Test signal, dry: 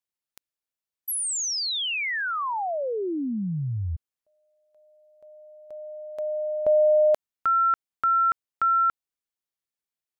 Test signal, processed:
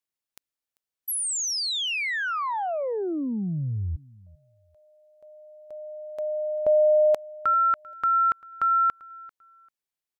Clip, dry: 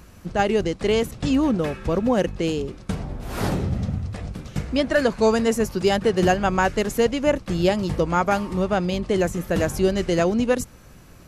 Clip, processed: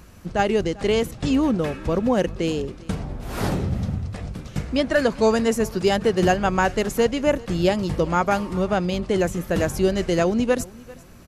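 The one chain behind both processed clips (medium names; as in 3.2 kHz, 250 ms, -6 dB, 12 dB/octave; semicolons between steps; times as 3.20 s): feedback delay 393 ms, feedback 23%, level -22 dB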